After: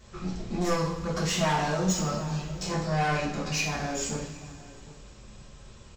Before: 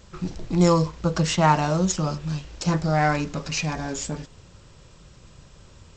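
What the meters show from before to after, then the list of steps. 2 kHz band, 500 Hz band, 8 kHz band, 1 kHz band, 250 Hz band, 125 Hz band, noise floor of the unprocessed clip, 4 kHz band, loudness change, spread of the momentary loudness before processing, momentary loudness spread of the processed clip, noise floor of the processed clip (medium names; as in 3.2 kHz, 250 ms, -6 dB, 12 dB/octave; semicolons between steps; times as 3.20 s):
-2.5 dB, -5.0 dB, -1.5 dB, -6.0 dB, -6.5 dB, -6.5 dB, -50 dBFS, -2.0 dB, -5.5 dB, 12 LU, 15 LU, -49 dBFS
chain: echo from a far wall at 130 m, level -21 dB; saturation -20 dBFS, distortion -9 dB; two-slope reverb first 0.49 s, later 2.9 s, from -18 dB, DRR -6.5 dB; trim -7 dB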